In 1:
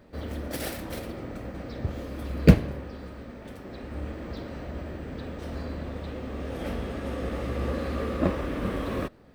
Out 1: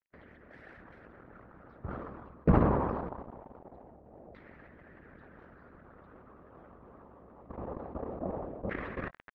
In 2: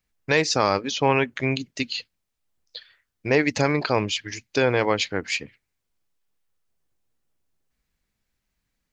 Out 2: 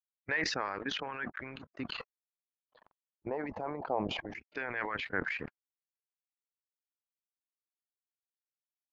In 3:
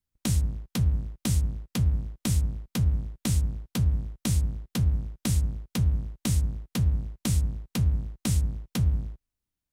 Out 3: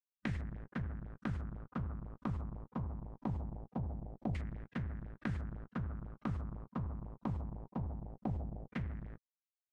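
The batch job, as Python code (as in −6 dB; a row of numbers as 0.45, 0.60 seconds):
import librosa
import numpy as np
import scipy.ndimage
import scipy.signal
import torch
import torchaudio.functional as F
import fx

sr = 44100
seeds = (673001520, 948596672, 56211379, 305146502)

y = np.sign(x) * np.maximum(np.abs(x) - 10.0 ** (-46.0 / 20.0), 0.0)
y = fx.level_steps(y, sr, step_db=15)
y = fx.filter_lfo_lowpass(y, sr, shape='saw_down', hz=0.23, low_hz=710.0, high_hz=2000.0, q=3.5)
y = fx.hpss(y, sr, part='harmonic', gain_db=-16)
y = fx.sustainer(y, sr, db_per_s=33.0)
y = F.gain(torch.from_numpy(y), -5.0).numpy()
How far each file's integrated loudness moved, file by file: −3.0, −13.5, −14.5 LU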